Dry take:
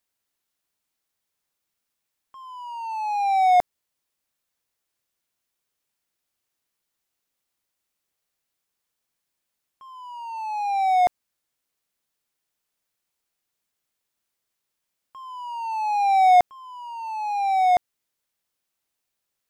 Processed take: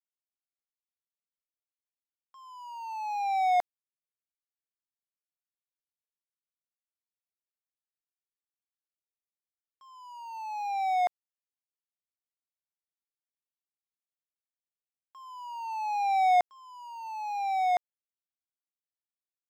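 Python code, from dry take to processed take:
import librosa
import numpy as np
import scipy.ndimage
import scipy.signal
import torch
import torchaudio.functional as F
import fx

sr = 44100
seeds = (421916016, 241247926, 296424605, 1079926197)

y = fx.highpass(x, sr, hz=1500.0, slope=6)
y = fx.high_shelf(y, sr, hz=2900.0, db=-8.5)
y = np.sign(y) * np.maximum(np.abs(y) - 10.0 ** (-57.0 / 20.0), 0.0)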